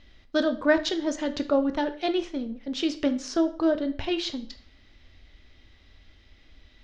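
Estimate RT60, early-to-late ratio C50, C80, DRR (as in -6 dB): 0.50 s, 14.5 dB, 18.0 dB, 9.0 dB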